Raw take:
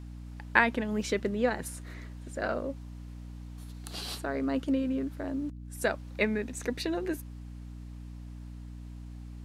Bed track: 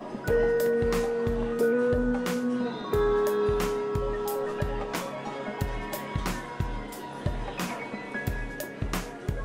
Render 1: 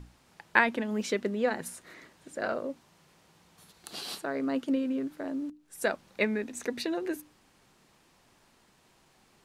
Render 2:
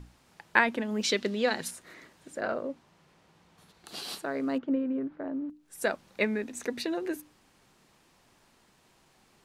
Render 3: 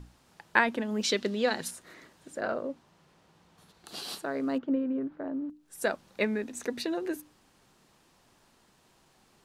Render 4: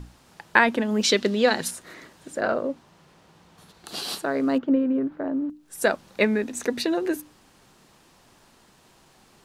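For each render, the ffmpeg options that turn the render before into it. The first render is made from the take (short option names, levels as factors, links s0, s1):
-af "bandreject=f=60:t=h:w=6,bandreject=f=120:t=h:w=6,bandreject=f=180:t=h:w=6,bandreject=f=240:t=h:w=6,bandreject=f=300:t=h:w=6"
-filter_complex "[0:a]asettb=1/sr,asplit=3[s0][s1][s2];[s0]atrim=end=1.034[s3];[s1]atrim=start=1.03:end=1.71,asetpts=PTS-STARTPTS,afade=t=in:d=0.004:c=qsin,afade=t=out:st=0.676:d=0.004:c=qsin,equalizer=f=4100:t=o:w=1.5:g=12[s4];[s2]atrim=start=1.706[s5];[s3][s4]acrossfade=d=0.004:c1=hsin:c2=qsin[s6];[s6][s5]acrossfade=d=0.004:c1=qsin:c2=hsin,asettb=1/sr,asplit=3[s7][s8][s9];[s7]atrim=end=2.404[s10];[s8]atrim=start=2.4:end=3.88,asetpts=PTS-STARTPTS,afade=t=in:d=0.004:c=qsin,afade=t=out:st=1.476:d=0.004:c=qsin,aemphasis=mode=reproduction:type=cd[s11];[s9]atrim=start=3.876[s12];[s10][s11]acrossfade=d=0.004:c1=hsin:c2=qsin[s13];[s13][s12]acrossfade=d=0.004:c1=qsin:c2=hsin,asettb=1/sr,asplit=3[s14][s15][s16];[s14]atrim=end=4.584[s17];[s15]atrim=start=4.58:end=5.5,asetpts=PTS-STARTPTS,afade=t=in:d=0.004:c=qsin,afade=t=out:st=0.916:d=0.004:c=qsin,lowpass=1600[s18];[s16]atrim=start=5.496[s19];[s17][s18]acrossfade=d=0.004:c1=hsin:c2=qsin[s20];[s20][s19]acrossfade=d=0.004:c1=qsin:c2=hsin"
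-af "equalizer=f=2200:t=o:w=0.51:g=-3"
-af "volume=2.37,alimiter=limit=0.891:level=0:latency=1"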